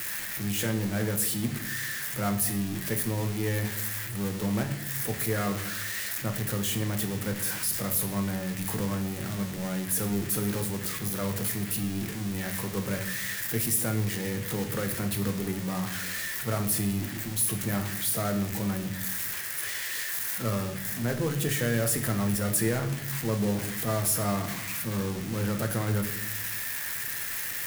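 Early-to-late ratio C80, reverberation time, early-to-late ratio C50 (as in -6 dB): 13.0 dB, 0.80 s, 10.0 dB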